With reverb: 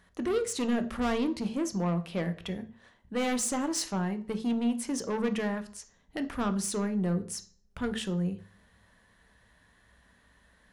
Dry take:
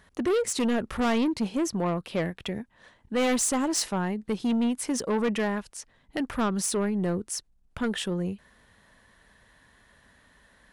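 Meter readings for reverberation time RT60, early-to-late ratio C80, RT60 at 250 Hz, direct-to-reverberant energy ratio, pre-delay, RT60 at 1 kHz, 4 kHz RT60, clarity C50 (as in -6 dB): 0.45 s, 19.5 dB, 0.50 s, 8.5 dB, 3 ms, 0.50 s, 0.40 s, 14.5 dB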